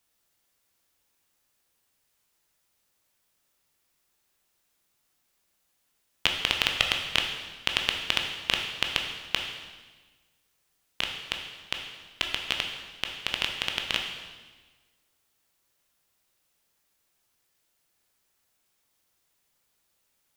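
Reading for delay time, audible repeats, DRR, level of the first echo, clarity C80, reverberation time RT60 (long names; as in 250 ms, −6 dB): no echo audible, no echo audible, 2.0 dB, no echo audible, 6.5 dB, 1.3 s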